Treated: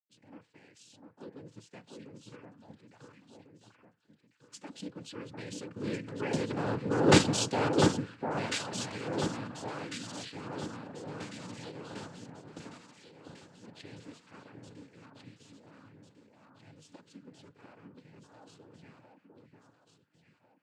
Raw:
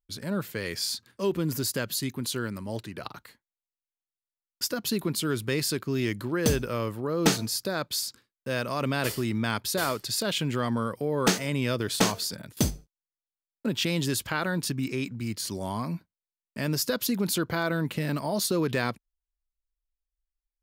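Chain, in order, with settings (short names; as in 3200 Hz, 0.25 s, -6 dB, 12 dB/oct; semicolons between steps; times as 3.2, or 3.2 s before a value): Doppler pass-by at 7.26, 7 m/s, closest 1.8 m; LPF 4800 Hz 12 dB/oct; in parallel at +3 dB: level quantiser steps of 14 dB; on the sum: noise vocoder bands 8; echo with dull and thin repeats by turns 0.699 s, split 1600 Hz, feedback 62%, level -3 dB; FDN reverb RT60 0.32 s, low-frequency decay 0.7×, high-frequency decay 0.6×, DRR 14.5 dB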